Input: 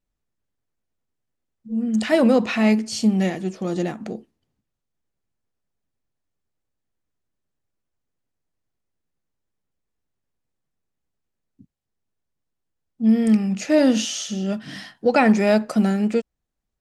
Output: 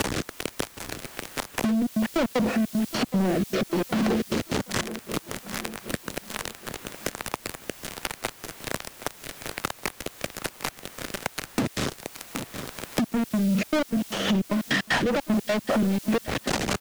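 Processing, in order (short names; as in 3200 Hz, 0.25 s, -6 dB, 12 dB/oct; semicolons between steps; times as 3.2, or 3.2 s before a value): zero-crossing step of -22.5 dBFS; HPF 250 Hz 6 dB/oct; treble ducked by the level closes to 640 Hz, closed at -18 dBFS; sample leveller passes 5; compressor, threshold -17 dBFS, peak gain reduction 6.5 dB; rotary speaker horn 1.2 Hz, later 5 Hz, at 13.44; step gate "xxx.x.x." 153 bpm -60 dB; requantised 8-bit, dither triangular; on a send: feedback echo 0.769 s, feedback 43%, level -18 dB; on the sum: three-band squash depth 70%; gain -2.5 dB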